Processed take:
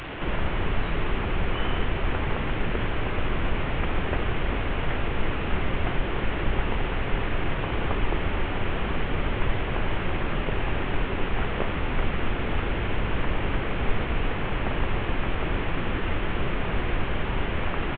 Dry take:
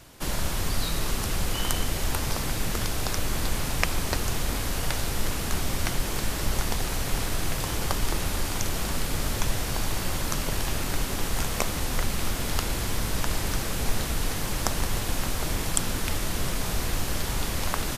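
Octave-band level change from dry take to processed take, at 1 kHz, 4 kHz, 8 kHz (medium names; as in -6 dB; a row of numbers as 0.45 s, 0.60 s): +2.5 dB, -5.0 dB, under -40 dB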